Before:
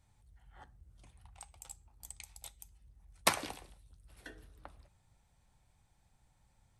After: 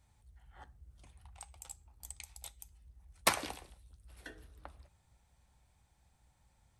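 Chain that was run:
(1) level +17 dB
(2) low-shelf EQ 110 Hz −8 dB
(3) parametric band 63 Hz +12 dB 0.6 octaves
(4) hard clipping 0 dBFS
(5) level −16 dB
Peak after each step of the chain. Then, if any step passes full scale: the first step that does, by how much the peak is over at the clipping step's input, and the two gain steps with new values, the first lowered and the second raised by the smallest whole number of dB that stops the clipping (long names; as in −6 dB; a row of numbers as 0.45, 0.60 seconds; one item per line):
+6.5, +6.5, +6.5, 0.0, −16.0 dBFS
step 1, 6.5 dB
step 1 +10 dB, step 5 −9 dB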